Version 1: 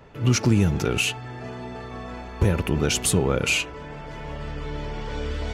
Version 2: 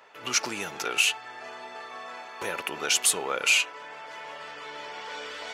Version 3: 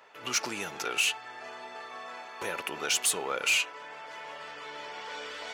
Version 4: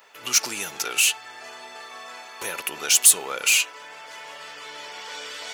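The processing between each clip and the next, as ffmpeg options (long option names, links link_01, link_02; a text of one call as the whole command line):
ffmpeg -i in.wav -af "highpass=810,volume=1.5dB" out.wav
ffmpeg -i in.wav -af "asoftclip=type=tanh:threshold=-16dB,volume=-2dB" out.wav
ffmpeg -i in.wav -af "crystalizer=i=3.5:c=0" out.wav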